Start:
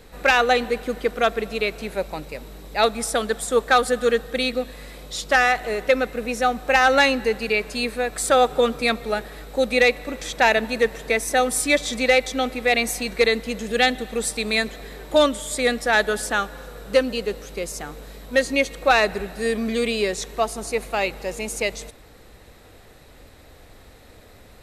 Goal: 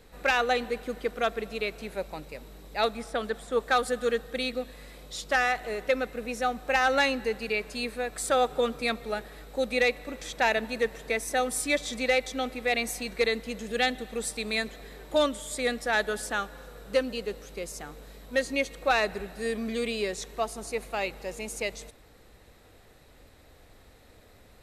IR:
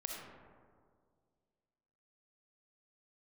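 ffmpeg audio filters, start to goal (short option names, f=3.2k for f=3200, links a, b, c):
-filter_complex "[0:a]asettb=1/sr,asplit=3[a][b][c];[a]atrim=end=2.934[d];[b]atrim=start=2.93:end=3.64,asetpts=PTS-STARTPTS,afade=t=in:d=0.004:c=qsin,afade=t=out:st=0.706:d=0.004:c=qsin,acrossover=split=3700[e][f];[f]acompressor=threshold=-43dB:ratio=4:attack=1:release=60[g];[e][g]amix=inputs=2:normalize=0[h];[c]atrim=start=3.636[i];[d][h]acrossfade=d=0.004:c1=hsin:c2=qsin[j];[j][i]acrossfade=d=0.004:c1=qsin:c2=hsin,volume=-7.5dB"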